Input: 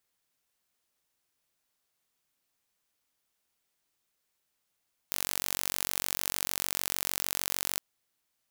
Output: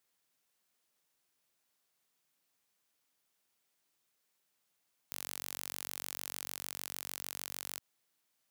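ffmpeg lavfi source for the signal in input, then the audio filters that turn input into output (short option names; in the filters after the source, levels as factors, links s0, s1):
-f lavfi -i "aevalsrc='0.668*eq(mod(n,946),0)':d=2.66:s=44100"
-af "highpass=110,alimiter=limit=0.211:level=0:latency=1:release=58"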